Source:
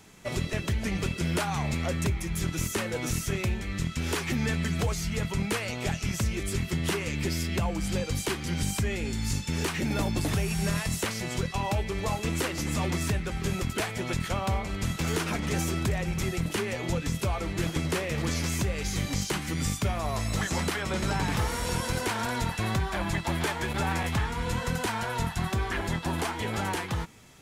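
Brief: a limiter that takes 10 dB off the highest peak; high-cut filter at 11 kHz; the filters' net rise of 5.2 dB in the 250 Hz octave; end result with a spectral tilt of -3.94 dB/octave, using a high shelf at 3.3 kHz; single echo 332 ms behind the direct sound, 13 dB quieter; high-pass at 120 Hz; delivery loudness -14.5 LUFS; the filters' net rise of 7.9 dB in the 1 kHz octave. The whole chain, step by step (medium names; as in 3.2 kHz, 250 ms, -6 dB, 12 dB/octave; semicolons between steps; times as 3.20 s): high-pass 120 Hz; low-pass 11 kHz; peaking EQ 250 Hz +7.5 dB; peaking EQ 1 kHz +8.5 dB; treble shelf 3.3 kHz +7.5 dB; peak limiter -20.5 dBFS; delay 332 ms -13 dB; trim +15 dB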